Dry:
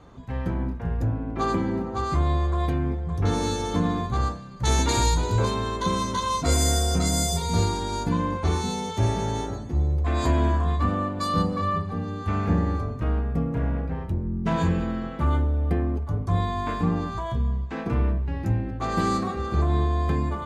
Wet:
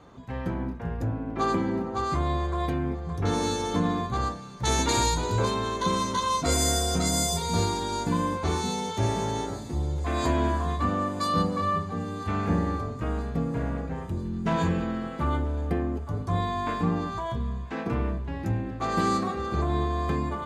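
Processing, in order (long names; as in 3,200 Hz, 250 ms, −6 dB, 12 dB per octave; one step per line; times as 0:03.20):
low-shelf EQ 88 Hz −10.5 dB
on a send: feedback echo with a high-pass in the loop 987 ms, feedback 72%, high-pass 830 Hz, level −21 dB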